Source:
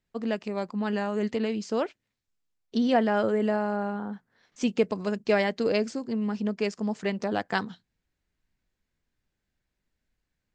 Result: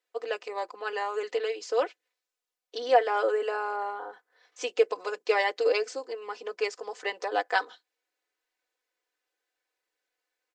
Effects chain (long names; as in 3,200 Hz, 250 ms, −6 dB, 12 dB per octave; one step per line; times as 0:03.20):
elliptic high-pass filter 350 Hz, stop band 40 dB
comb filter 4 ms, depth 83%